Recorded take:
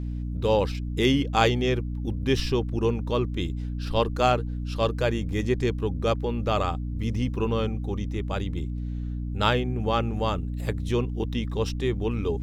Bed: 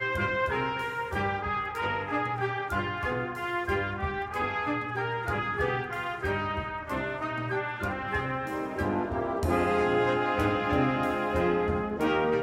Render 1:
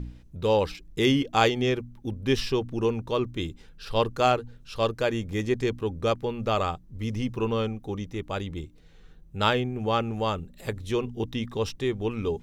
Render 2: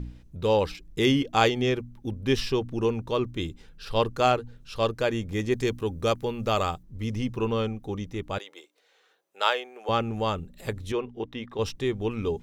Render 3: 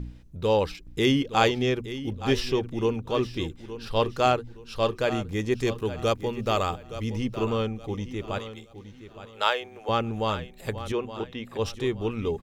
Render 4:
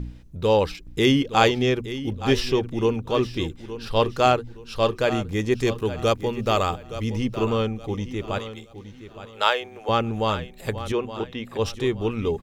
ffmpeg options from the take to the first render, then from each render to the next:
-af "bandreject=f=60:t=h:w=4,bandreject=f=120:t=h:w=4,bandreject=f=180:t=h:w=4,bandreject=f=240:t=h:w=4,bandreject=f=300:t=h:w=4"
-filter_complex "[0:a]asettb=1/sr,asplit=3[a][b][c];[a]atrim=end=5.524[d];[b]atrim=start=5.52:end=6.83,asetpts=PTS-STARTPTS,afade=t=in:d=0.004:c=qsin,afade=t=out:st=1.306:d=0.004:c=qsin,highshelf=f=6.2k:g=10[e];[c]atrim=start=6.826[f];[d][e]acrossfade=d=0.004:c1=hsin:c2=qsin[g];[g][f]acrossfade=d=0.004:c1=qsin:c2=hsin,asettb=1/sr,asplit=3[h][i][j];[h]atrim=end=8.384[k];[i]atrim=start=8.38:end=9.89,asetpts=PTS-STARTPTS,afade=t=in:d=0.004:c=qsin,afade=t=out:st=1.506:d=0.004:c=qsin,highpass=f=500:w=0.5412,highpass=f=500:w=1.3066[l];[j]atrim=start=9.886[m];[k][l]acrossfade=d=0.004:c1=hsin:c2=qsin[n];[n][m]acrossfade=d=0.004:c1=qsin:c2=hsin,asettb=1/sr,asplit=3[o][p][q];[o]atrim=end=10.924[r];[p]atrim=start=10.92:end=11.59,asetpts=PTS-STARTPTS,afade=t=in:d=0.004:c=qsin,afade=t=out:st=0.666:d=0.004:c=qsin,bass=f=250:g=-11,treble=f=4k:g=-14[s];[q]atrim=start=11.586[t];[r][s]acrossfade=d=0.004:c1=hsin:c2=qsin[u];[u][t]acrossfade=d=0.004:c1=qsin:c2=hsin"
-af "aecho=1:1:868|1736|2604:0.224|0.0694|0.0215"
-af "volume=3.5dB"

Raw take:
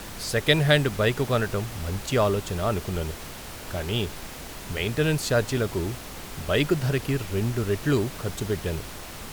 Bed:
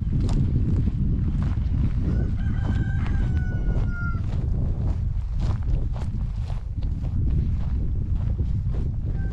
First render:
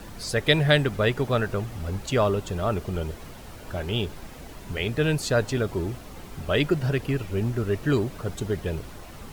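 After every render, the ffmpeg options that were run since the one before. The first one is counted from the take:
-af "afftdn=nr=9:nf=-39"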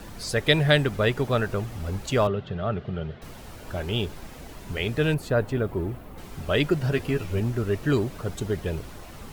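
-filter_complex "[0:a]asettb=1/sr,asplit=3[a][b][c];[a]atrim=end=2.274[d];[b]atrim=start=2.27:end=3.22,asetpts=PTS-STARTPTS,afade=t=in:d=0.004:c=qsin,afade=t=out:st=0.946:d=0.004:c=qsin,highpass=100,equalizer=f=140:t=q:w=4:g=7,equalizer=f=310:t=q:w=4:g=-10,equalizer=f=510:t=q:w=4:g=-3,equalizer=f=970:t=q:w=4:g=-10,equalizer=f=2.4k:t=q:w=4:g=-6,lowpass=f=3.4k:w=0.5412,lowpass=f=3.4k:w=1.3066[e];[c]atrim=start=3.216[f];[d][e]acrossfade=d=0.004:c1=hsin:c2=qsin[g];[g][f]acrossfade=d=0.004:c1=qsin:c2=hsin,asettb=1/sr,asplit=3[h][i][j];[h]atrim=end=5.144[k];[i]atrim=start=5.14:end=6.18,asetpts=PTS-STARTPTS,afade=t=in:d=0.004:c=qsin,afade=t=out:st=1.036:d=0.004:c=qsin,equalizer=f=5.9k:t=o:w=1.9:g=-14.5[l];[j]atrim=start=6.176[m];[k][l]acrossfade=d=0.004:c1=hsin:c2=qsin[n];[n][m]acrossfade=d=0.004:c1=qsin:c2=hsin,asettb=1/sr,asplit=3[o][p][q];[o]atrim=end=6.914[r];[p]atrim=start=6.91:end=7.4,asetpts=PTS-STARTPTS,afade=t=in:d=0.004:c=qsin,afade=t=out:st=0.486:d=0.004:c=qsin,asplit=2[s][t];[t]adelay=12,volume=-5dB[u];[s][u]amix=inputs=2:normalize=0,atrim=end_sample=21609[v];[q]atrim=start=7.396[w];[r][v]acrossfade=d=0.004:c1=hsin:c2=qsin[x];[x][w]acrossfade=d=0.004:c1=qsin:c2=hsin"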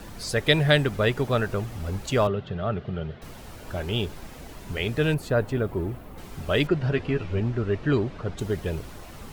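-filter_complex "[0:a]asettb=1/sr,asplit=3[a][b][c];[a]atrim=end=6.674[d];[b]atrim=start=6.67:end=8.39,asetpts=PTS-STARTPTS,afade=t=in:d=0.004:c=qsin,afade=t=out:st=1.716:d=0.004:c=qsin,lowpass=3.8k[e];[c]atrim=start=8.386[f];[d][e]acrossfade=d=0.004:c1=hsin:c2=qsin[g];[g][f]acrossfade=d=0.004:c1=qsin:c2=hsin"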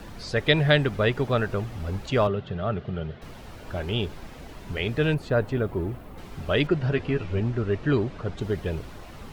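-filter_complex "[0:a]acrossover=split=5300[a][b];[b]acompressor=threshold=-59dB:ratio=4:attack=1:release=60[c];[a][c]amix=inputs=2:normalize=0"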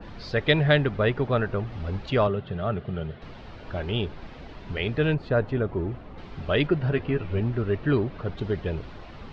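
-af "lowpass=f=4.7k:w=0.5412,lowpass=f=4.7k:w=1.3066,adynamicequalizer=threshold=0.00891:dfrequency=2400:dqfactor=0.7:tfrequency=2400:tqfactor=0.7:attack=5:release=100:ratio=0.375:range=3:mode=cutabove:tftype=highshelf"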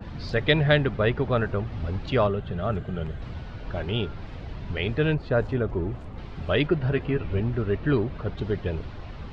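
-filter_complex "[1:a]volume=-14dB[a];[0:a][a]amix=inputs=2:normalize=0"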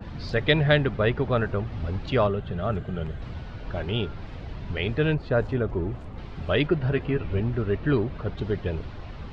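-af anull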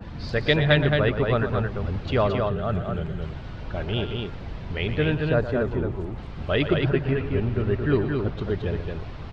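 -af "aecho=1:1:119.5|221.6:0.282|0.631"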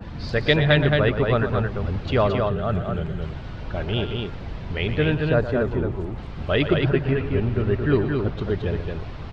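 -af "volume=2dB,alimiter=limit=-3dB:level=0:latency=1"

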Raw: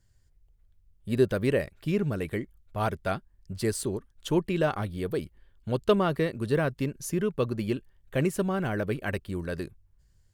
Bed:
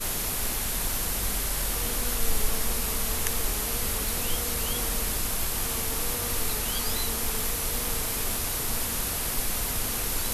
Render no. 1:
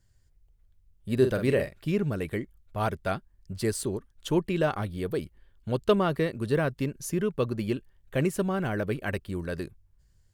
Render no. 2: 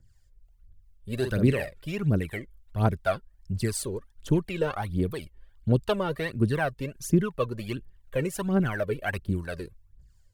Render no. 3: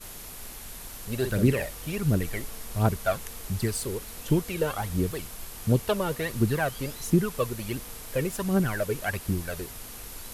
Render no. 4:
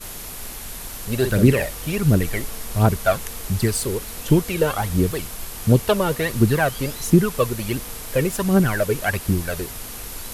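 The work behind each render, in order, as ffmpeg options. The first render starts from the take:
-filter_complex "[0:a]asettb=1/sr,asplit=3[a][b][c];[a]atrim=end=1.154[d];[b]atrim=start=1.15:end=1.78,asetpts=PTS-STARTPTS,afade=t=in:d=0.004:c=qsin,afade=t=out:st=0.626:d=0.004:c=qsin,asplit=2[e][f];[f]adelay=46,volume=-7.5dB[g];[e][g]amix=inputs=2:normalize=0,atrim=end_sample=27783[h];[c]atrim=start=1.776[i];[d][h]acrossfade=d=0.004:c1=hsin:c2=qsin[j];[j][i]acrossfade=d=0.004:c1=qsin:c2=hsin"
-filter_complex "[0:a]aphaser=in_gain=1:out_gain=1:delay=2.3:decay=0.68:speed=1.4:type=triangular,acrossover=split=400[a][b];[a]aeval=exprs='val(0)*(1-0.5/2+0.5/2*cos(2*PI*2.8*n/s))':c=same[c];[b]aeval=exprs='val(0)*(1-0.5/2-0.5/2*cos(2*PI*2.8*n/s))':c=same[d];[c][d]amix=inputs=2:normalize=0"
-filter_complex "[1:a]volume=-12.5dB[a];[0:a][a]amix=inputs=2:normalize=0"
-af "volume=7.5dB,alimiter=limit=-2dB:level=0:latency=1"

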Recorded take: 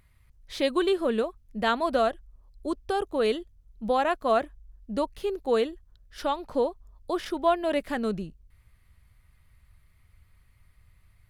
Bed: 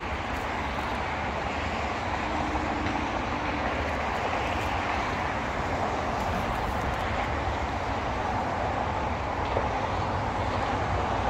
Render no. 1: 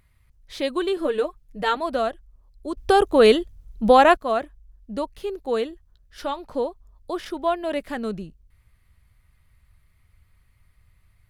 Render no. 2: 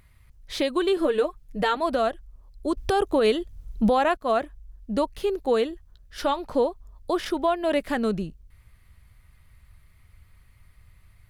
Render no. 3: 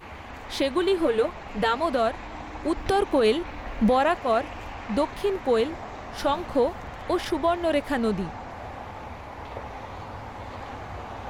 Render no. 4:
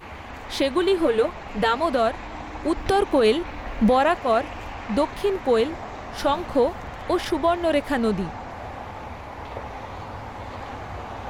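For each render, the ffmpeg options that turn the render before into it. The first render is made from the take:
-filter_complex "[0:a]asettb=1/sr,asplit=3[a][b][c];[a]atrim=end=0.964[d];[b]atrim=start=0.96:end=1.77,asetpts=PTS-STARTPTS,afade=t=in:d=0.004:c=qsin,afade=t=out:st=0.806:d=0.004:c=qsin,aecho=1:1:6.6:0.8,atrim=end_sample=35721[e];[c]atrim=start=1.766[f];[d][e]acrossfade=d=0.004:c1=hsin:c2=qsin[g];[g][f]acrossfade=d=0.004:c1=qsin:c2=hsin,asettb=1/sr,asplit=3[h][i][j];[h]atrim=end=5.694[k];[i]atrim=start=5.69:end=6.39,asetpts=PTS-STARTPTS,afade=t=in:d=0.004:c=qsin,afade=t=out:st=0.696:d=0.004:c=qsin,asplit=2[l][m];[m]adelay=15,volume=-12.5dB[n];[l][n]amix=inputs=2:normalize=0,atrim=end_sample=30870[o];[j]atrim=start=6.386[p];[k][o]acrossfade=d=0.004:c1=hsin:c2=qsin[q];[q][p]acrossfade=d=0.004:c1=qsin:c2=hsin,asplit=3[r][s][t];[r]atrim=end=2.772[u];[s]atrim=start=2.768:end=4.172,asetpts=PTS-STARTPTS,volume=11dB[v];[t]atrim=start=4.168[w];[u][v]acrossfade=d=0.004:c1=hsin:c2=hsin[x];[x][w]acrossfade=d=0.004:c1=hsin:c2=hsin"
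-filter_complex "[0:a]asplit=2[a][b];[b]acompressor=threshold=-27dB:ratio=6,volume=-2dB[c];[a][c]amix=inputs=2:normalize=0,alimiter=limit=-13dB:level=0:latency=1:release=244"
-filter_complex "[1:a]volume=-9.5dB[a];[0:a][a]amix=inputs=2:normalize=0"
-af "volume=2.5dB"

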